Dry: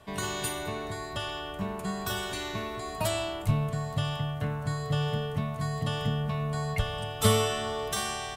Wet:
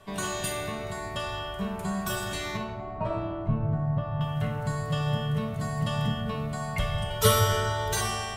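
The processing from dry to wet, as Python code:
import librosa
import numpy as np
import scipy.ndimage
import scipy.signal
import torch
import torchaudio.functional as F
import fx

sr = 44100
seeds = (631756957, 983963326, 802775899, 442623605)

y = fx.lowpass(x, sr, hz=1100.0, slope=12, at=(2.57, 4.21))
y = fx.comb(y, sr, ms=2.1, depth=0.99, at=(7.1, 8.01))
y = fx.room_shoebox(y, sr, seeds[0], volume_m3=550.0, walls='mixed', distance_m=1.1)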